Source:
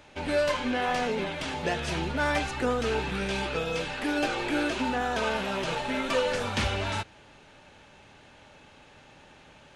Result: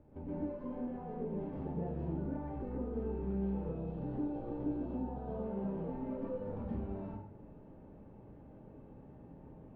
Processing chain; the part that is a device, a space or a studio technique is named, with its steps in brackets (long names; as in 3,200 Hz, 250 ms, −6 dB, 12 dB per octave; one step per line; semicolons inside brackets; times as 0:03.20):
0:03.68–0:05.32: graphic EQ with 10 bands 125 Hz +7 dB, 250 Hz −3 dB, 2,000 Hz −7 dB, 4,000 Hz +4 dB
television next door (downward compressor 6 to 1, threshold −37 dBFS, peak gain reduction 14.5 dB; low-pass filter 350 Hz 12 dB per octave; convolution reverb RT60 0.65 s, pre-delay 113 ms, DRR −7.5 dB)
level −1.5 dB